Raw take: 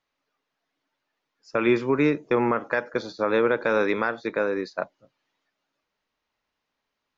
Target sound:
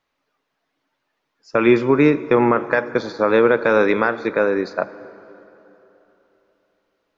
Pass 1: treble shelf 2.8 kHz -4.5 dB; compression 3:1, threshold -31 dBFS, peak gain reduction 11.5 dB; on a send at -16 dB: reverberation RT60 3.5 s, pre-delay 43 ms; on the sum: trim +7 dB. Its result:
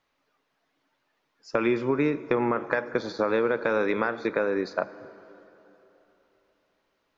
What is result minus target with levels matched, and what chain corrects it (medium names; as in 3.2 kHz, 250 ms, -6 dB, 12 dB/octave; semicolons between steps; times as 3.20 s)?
compression: peak gain reduction +11.5 dB
treble shelf 2.8 kHz -4.5 dB; on a send at -16 dB: reverberation RT60 3.5 s, pre-delay 43 ms; on the sum: trim +7 dB